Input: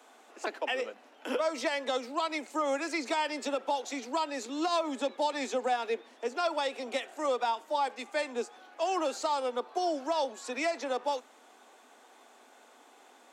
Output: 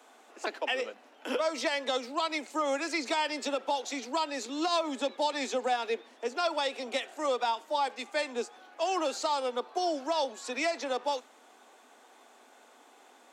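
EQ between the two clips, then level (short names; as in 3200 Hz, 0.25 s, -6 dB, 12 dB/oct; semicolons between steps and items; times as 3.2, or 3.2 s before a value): dynamic EQ 4200 Hz, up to +4 dB, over -48 dBFS, Q 0.83; 0.0 dB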